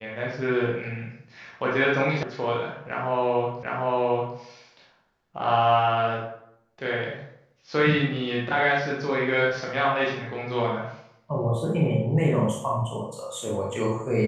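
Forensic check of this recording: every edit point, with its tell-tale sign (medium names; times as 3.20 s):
2.23 s: sound stops dead
3.63 s: repeat of the last 0.75 s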